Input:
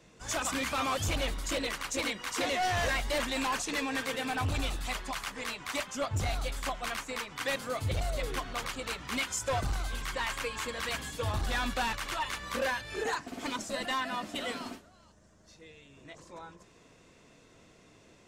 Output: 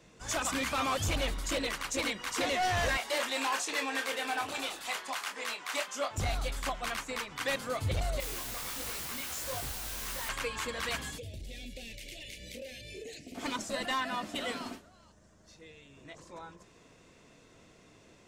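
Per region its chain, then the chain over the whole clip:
2.97–6.18 s: high-pass 410 Hz + doubling 26 ms -7.5 dB
8.20–10.29 s: compression, threshold -35 dBFS + word length cut 6-bit, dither triangular + detune thickener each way 52 cents
11.18–13.35 s: Chebyshev band-stop 580–2200 Hz, order 3 + compression 4:1, threshold -42 dBFS
whole clip: none

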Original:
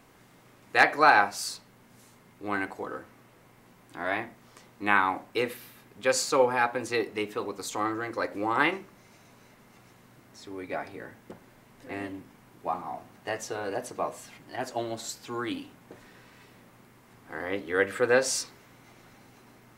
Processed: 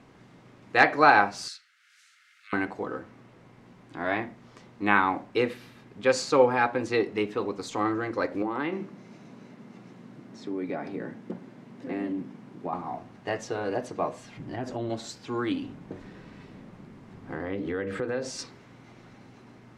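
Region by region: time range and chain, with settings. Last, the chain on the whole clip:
1.48–2.53 s: steep high-pass 1.3 kHz 96 dB/octave + tape noise reduction on one side only encoder only
8.42–12.73 s: high-pass 160 Hz 24 dB/octave + bass shelf 370 Hz +10 dB + compression 2.5:1, threshold -33 dBFS
14.37–14.90 s: bass shelf 330 Hz +11.5 dB + band-stop 4.4 kHz, Q 19 + compression 3:1, threshold -34 dBFS
15.62–18.39 s: bass shelf 380 Hz +9.5 dB + hum notches 60/120/180/240/300/360/420/480 Hz + compression 4:1, threshold -32 dBFS
whole clip: low-pass 5.6 kHz 12 dB/octave; peaking EQ 180 Hz +6.5 dB 2.7 oct

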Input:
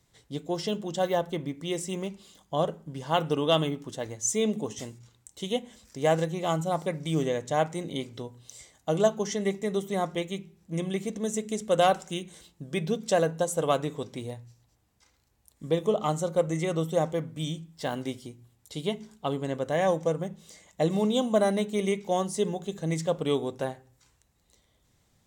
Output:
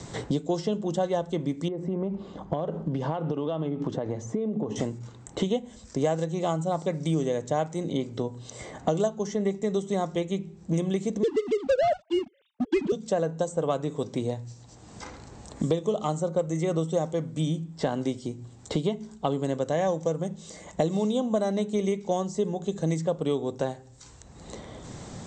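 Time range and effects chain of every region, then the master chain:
1.68–4.76 s: low-pass 1.2 kHz + compression 10:1, threshold -38 dBFS
11.23–12.92 s: formants replaced by sine waves + waveshaping leveller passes 3
whole clip: Chebyshev low-pass 8.3 kHz, order 10; peaking EQ 2.2 kHz -8 dB 2.1 oct; three bands compressed up and down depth 100%; trim +2 dB

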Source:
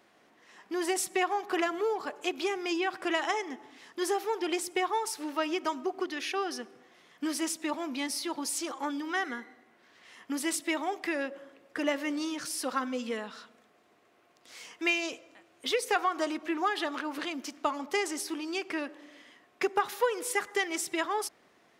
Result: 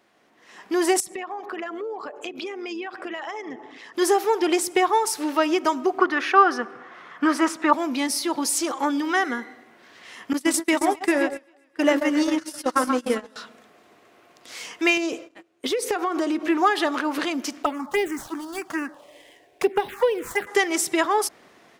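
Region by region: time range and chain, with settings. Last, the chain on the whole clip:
1.00–3.95 s: resonances exaggerated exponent 1.5 + compression 4:1, threshold -40 dBFS + AM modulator 110 Hz, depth 20%
5.98–7.73 s: low-pass 2.3 kHz 6 dB/octave + peaking EQ 1.3 kHz +14 dB 1.2 oct
10.33–13.36 s: echo whose repeats swap between lows and highs 132 ms, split 1.7 kHz, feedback 70%, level -5 dB + gate -33 dBFS, range -26 dB
14.97–16.48 s: gate -56 dBFS, range -19 dB + peaking EQ 350 Hz +8.5 dB 0.82 oct + compression 4:1, threshold -32 dBFS
17.63–20.47 s: median filter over 9 samples + touch-sensitive phaser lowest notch 200 Hz, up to 1.3 kHz, full sweep at -25 dBFS
whole clip: dynamic bell 3 kHz, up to -4 dB, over -43 dBFS, Q 0.83; level rider gain up to 10.5 dB

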